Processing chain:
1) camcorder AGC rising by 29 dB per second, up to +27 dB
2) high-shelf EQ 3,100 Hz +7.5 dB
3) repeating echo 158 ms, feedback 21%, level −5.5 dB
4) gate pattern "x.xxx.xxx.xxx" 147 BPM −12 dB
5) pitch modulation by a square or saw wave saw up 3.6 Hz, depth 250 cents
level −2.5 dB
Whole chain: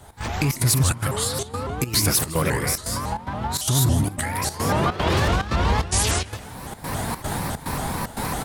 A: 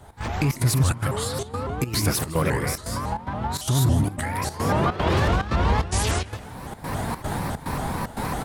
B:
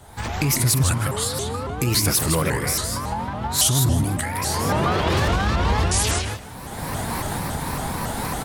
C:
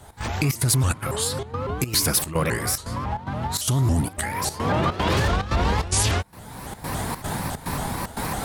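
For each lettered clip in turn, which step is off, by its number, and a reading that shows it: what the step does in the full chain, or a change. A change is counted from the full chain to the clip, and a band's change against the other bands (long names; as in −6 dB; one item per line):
2, 8 kHz band −6.0 dB
4, change in integrated loudness +1.0 LU
3, change in integrated loudness −1.0 LU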